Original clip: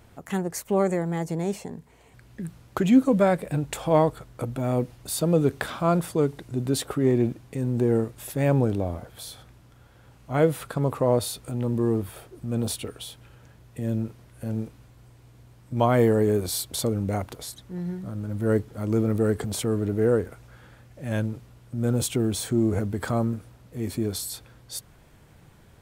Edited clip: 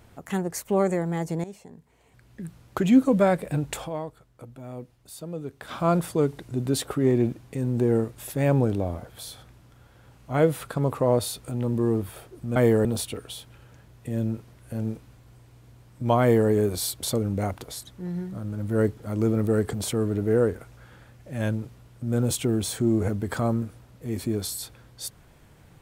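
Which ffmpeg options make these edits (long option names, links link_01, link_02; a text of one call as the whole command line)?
ffmpeg -i in.wav -filter_complex "[0:a]asplit=6[link_01][link_02][link_03][link_04][link_05][link_06];[link_01]atrim=end=1.44,asetpts=PTS-STARTPTS,afade=type=out:start_time=1.436:duration=0.004:curve=hsin:silence=0.188365[link_07];[link_02]atrim=start=1.44:end=4.16,asetpts=PTS-STARTPTS,afade=type=in:duration=1.48:silence=0.188365,afade=type=out:start_time=2.4:duration=0.32:curve=exp:silence=0.211349[link_08];[link_03]atrim=start=4.16:end=5.4,asetpts=PTS-STARTPTS,volume=-13.5dB[link_09];[link_04]atrim=start=5.4:end=12.562,asetpts=PTS-STARTPTS,afade=type=in:duration=0.32:curve=exp:silence=0.211349[link_10];[link_05]atrim=start=15.918:end=16.212[link_11];[link_06]atrim=start=12.558[link_12];[link_07][link_08][link_09][link_10]concat=n=4:v=0:a=1[link_13];[link_13][link_11]acrossfade=duration=0.004:curve1=hsin:curve2=hsin[link_14];[link_14][link_12]acrossfade=duration=0.004:curve1=hsin:curve2=hsin" out.wav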